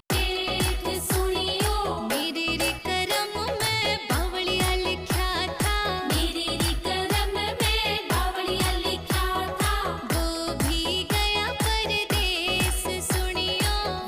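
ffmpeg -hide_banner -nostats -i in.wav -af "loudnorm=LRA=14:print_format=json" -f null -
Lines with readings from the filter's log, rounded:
"input_i" : "-24.9",
"input_tp" : "-14.9",
"input_lra" : "0.9",
"input_thresh" : "-34.9",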